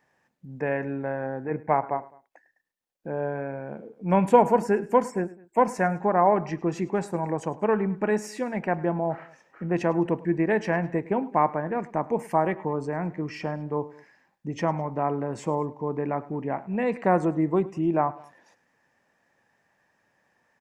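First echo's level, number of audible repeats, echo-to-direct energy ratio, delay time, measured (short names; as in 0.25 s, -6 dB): -20.0 dB, 2, -19.0 dB, 0.104 s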